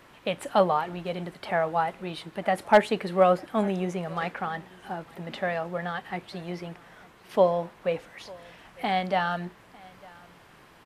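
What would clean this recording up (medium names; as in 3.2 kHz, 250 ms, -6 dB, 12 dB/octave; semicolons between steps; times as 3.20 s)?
clip repair -7.5 dBFS; inverse comb 901 ms -24 dB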